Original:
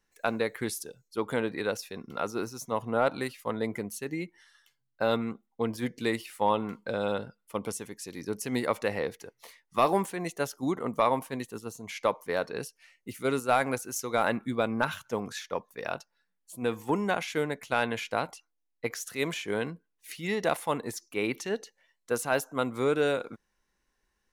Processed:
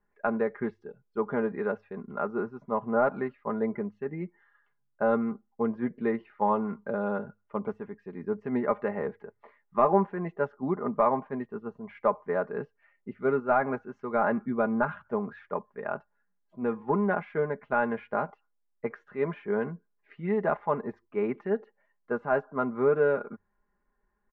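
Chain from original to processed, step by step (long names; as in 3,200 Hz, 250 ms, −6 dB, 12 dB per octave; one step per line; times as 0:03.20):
low-pass filter 1,600 Hz 24 dB per octave
mains-hum notches 50/100 Hz
comb filter 4.9 ms, depth 67%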